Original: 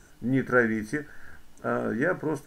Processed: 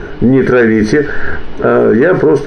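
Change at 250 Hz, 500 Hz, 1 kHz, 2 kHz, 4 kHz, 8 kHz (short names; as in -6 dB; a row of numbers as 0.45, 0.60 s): +17.5, +19.5, +14.0, +12.5, +21.5, +14.0 dB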